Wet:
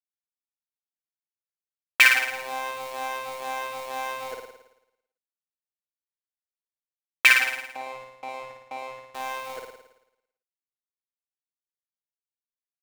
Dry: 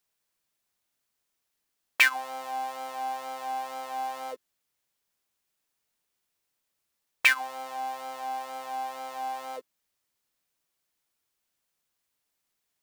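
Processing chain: 7.54–9.03 s: Chebyshev low-pass 710 Hz, order 2; gate with hold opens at -31 dBFS; in parallel at 0 dB: compression, threshold -39 dBFS, peak gain reduction 21.5 dB; on the sum: crossover distortion -34 dBFS; on a send: flutter echo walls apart 9.5 m, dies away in 0.85 s; on the sum: trim +4 dB

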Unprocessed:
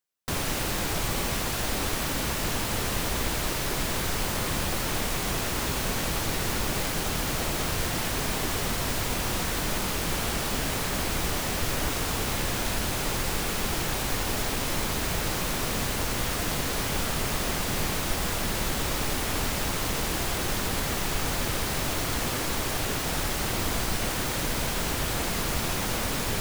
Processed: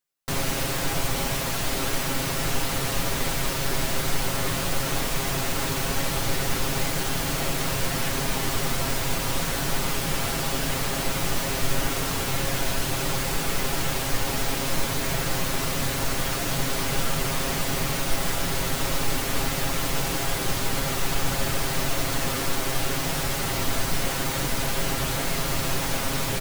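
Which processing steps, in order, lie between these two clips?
comb 7.4 ms; on a send: reverberation RT60 0.40 s, pre-delay 6 ms, DRR 11 dB

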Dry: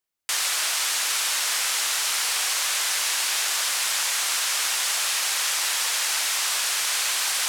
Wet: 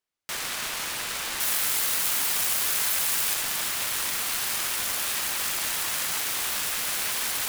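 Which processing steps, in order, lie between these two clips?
self-modulated delay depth 0.13 ms; treble shelf 8.6 kHz -10.5 dB, from 1.40 s +3.5 dB, from 3.34 s -2 dB

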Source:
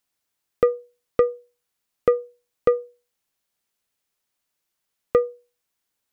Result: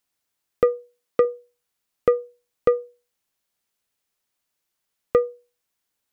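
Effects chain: 0.64–1.25 s: high-pass 160 Hz

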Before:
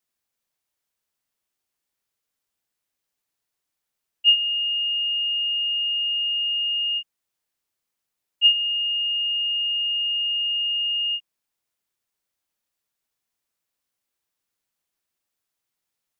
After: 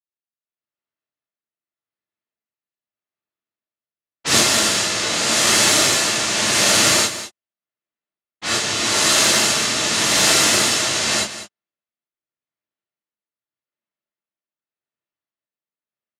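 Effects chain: one-sided wavefolder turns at -13.5 dBFS; peaking EQ 2.7 kHz +5.5 dB 0.23 oct; level rider gain up to 7 dB; waveshaping leveller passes 2; rotary cabinet horn 0.85 Hz; noise-vocoded speech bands 1; level-controlled noise filter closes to 2.7 kHz, open at -6 dBFS; on a send: delay 197 ms -12.5 dB; on the sum: gated-style reverb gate 90 ms rising, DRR -6.5 dB; trim -14.5 dB

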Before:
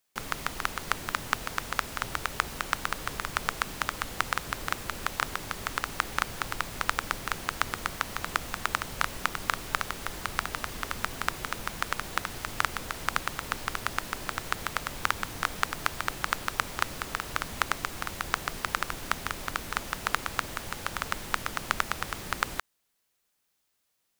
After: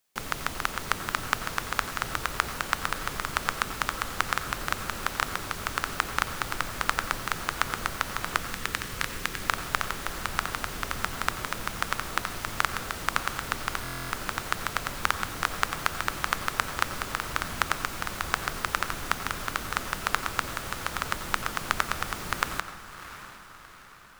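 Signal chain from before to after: time-frequency box 8.41–9.41 s, 550–1600 Hz -8 dB; echo that smears into a reverb 703 ms, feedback 49%, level -13 dB; on a send at -12 dB: reverberation RT60 0.50 s, pre-delay 86 ms; on the sum: buffer glitch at 13.83 s, samples 1024, times 11; trim +1.5 dB

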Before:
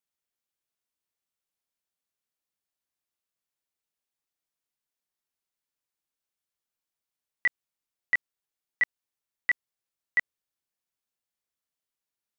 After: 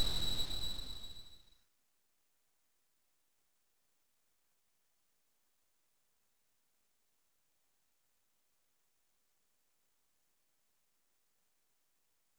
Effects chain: peaking EQ 3.5 kHz +11 dB 1 oct; Paulstretch 7.9×, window 1.00 s, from 10.49 s; full-wave rectifier; trim +9.5 dB

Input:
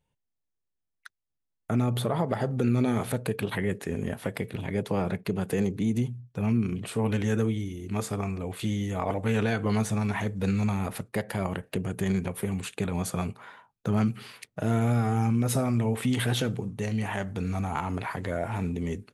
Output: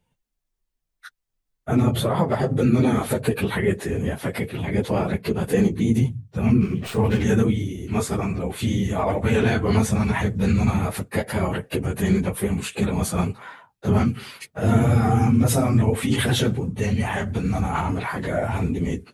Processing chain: phase randomisation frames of 50 ms; 6.60–7.21 s: sliding maximum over 3 samples; trim +6.5 dB

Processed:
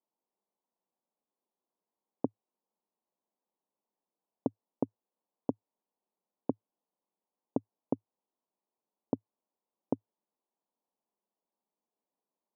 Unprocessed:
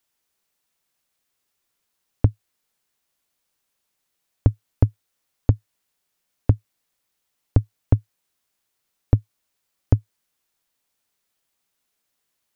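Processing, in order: elliptic band-pass 190–980 Hz, stop band 40 dB; trim -4 dB

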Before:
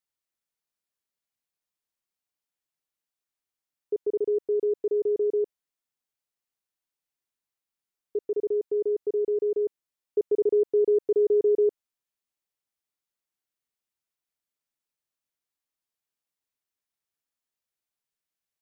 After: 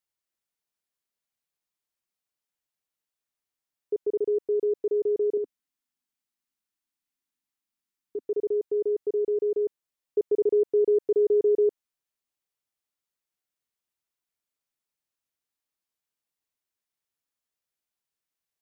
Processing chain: 5.37–8.25 s: graphic EQ 125/250/500 Hz -5/+9/-9 dB

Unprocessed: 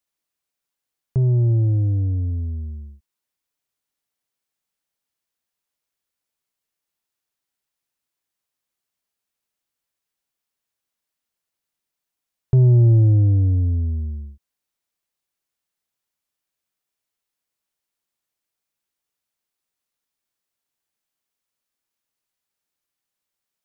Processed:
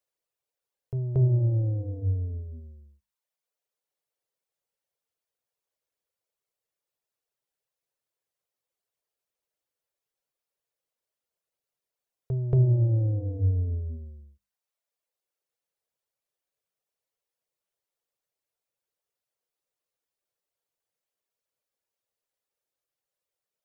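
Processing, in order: compression 5:1, threshold -17 dBFS, peak gain reduction 5 dB; hum notches 50/100/150/200/250 Hz; reverb removal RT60 1 s; graphic EQ 125/250/500 Hz +5/-6/+12 dB; reverse echo 230 ms -8.5 dB; trim -5 dB

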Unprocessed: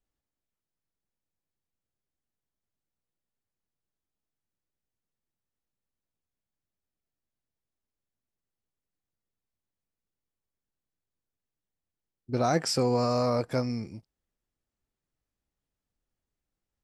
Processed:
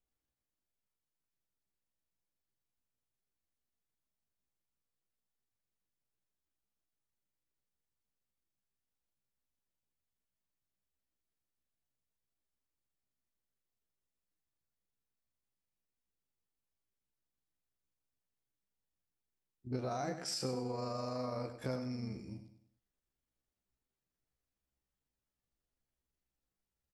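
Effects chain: compression 5:1, threshold -31 dBFS, peak gain reduction 10.5 dB; granular stretch 1.6×, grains 83 ms; on a send: feedback delay 99 ms, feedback 38%, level -10 dB; on the sum: trim -3.5 dB

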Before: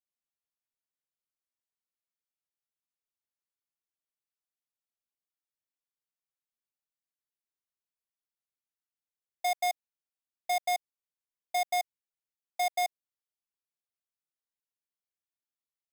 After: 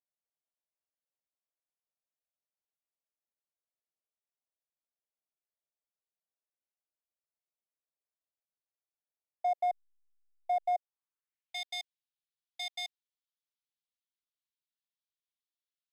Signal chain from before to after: band-pass sweep 600 Hz -> 3.6 kHz, 10.78–11.62 s; 9.61–10.72 s: hysteresis with a dead band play -54 dBFS; trim +2.5 dB

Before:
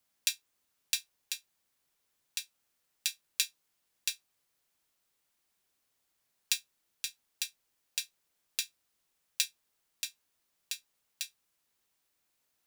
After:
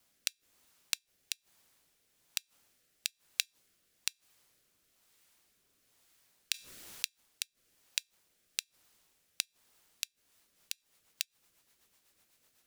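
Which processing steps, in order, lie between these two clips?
inverted gate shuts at -16 dBFS, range -32 dB; rotary cabinet horn 1.1 Hz, later 8 Hz, at 10.07 s; saturation -20 dBFS, distortion -8 dB; 6.54–7.06 s: level flattener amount 50%; trim +11 dB

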